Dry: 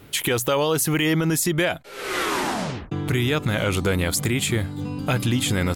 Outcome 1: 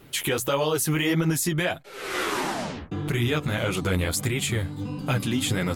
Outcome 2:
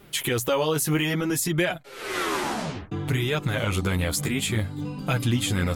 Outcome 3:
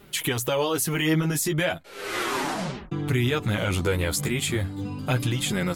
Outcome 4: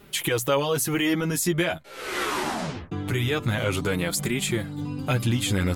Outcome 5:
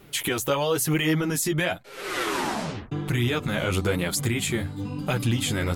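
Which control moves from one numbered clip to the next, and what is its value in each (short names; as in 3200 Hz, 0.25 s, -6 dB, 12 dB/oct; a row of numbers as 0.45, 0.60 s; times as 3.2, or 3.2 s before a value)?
flange, rate: 1.6, 0.6, 0.36, 0.23, 0.98 Hz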